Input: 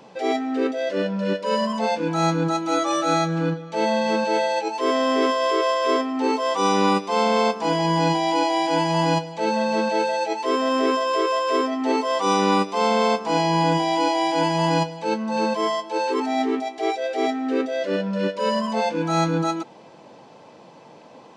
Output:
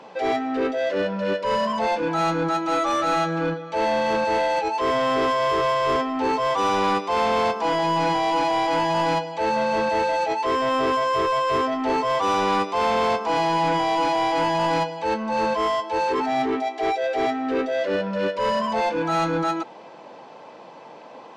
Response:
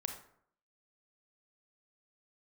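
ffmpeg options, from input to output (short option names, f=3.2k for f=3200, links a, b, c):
-filter_complex "[0:a]asplit=2[a][b];[b]highpass=f=720:p=1,volume=19dB,asoftclip=type=tanh:threshold=-7.5dB[c];[a][c]amix=inputs=2:normalize=0,lowpass=f=1.9k:p=1,volume=-6dB,volume=-5.5dB"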